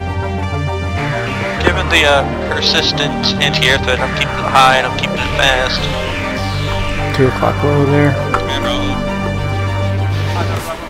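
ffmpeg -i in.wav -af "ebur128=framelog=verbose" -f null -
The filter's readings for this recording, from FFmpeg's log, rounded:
Integrated loudness:
  I:         -14.2 LUFS
  Threshold: -24.2 LUFS
Loudness range:
  LRA:         2.8 LU
  Threshold: -33.6 LUFS
  LRA low:   -15.0 LUFS
  LRA high:  -12.1 LUFS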